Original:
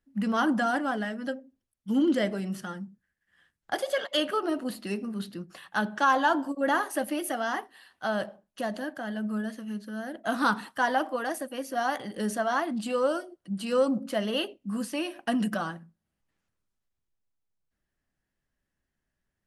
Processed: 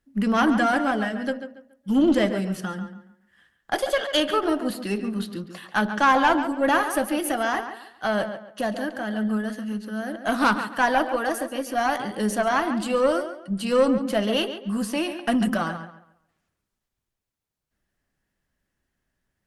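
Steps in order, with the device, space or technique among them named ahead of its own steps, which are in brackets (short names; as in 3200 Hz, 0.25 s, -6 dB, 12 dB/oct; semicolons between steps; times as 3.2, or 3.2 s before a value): rockabilly slapback (tube stage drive 16 dB, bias 0.45; tape echo 0.139 s, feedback 31%, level -9 dB, low-pass 3300 Hz); gain +7 dB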